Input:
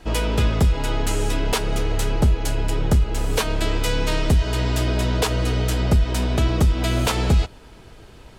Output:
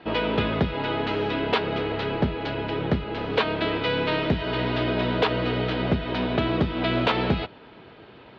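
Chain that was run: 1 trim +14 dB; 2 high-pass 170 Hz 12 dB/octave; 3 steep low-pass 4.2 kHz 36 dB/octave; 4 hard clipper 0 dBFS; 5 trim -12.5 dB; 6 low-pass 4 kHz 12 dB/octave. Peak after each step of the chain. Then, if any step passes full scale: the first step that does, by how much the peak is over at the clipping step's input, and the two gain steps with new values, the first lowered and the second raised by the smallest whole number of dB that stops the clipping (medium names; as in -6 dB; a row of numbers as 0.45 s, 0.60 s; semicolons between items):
+4.5 dBFS, +6.5 dBFS, +6.5 dBFS, 0.0 dBFS, -12.5 dBFS, -12.0 dBFS; step 1, 6.5 dB; step 1 +7 dB, step 5 -5.5 dB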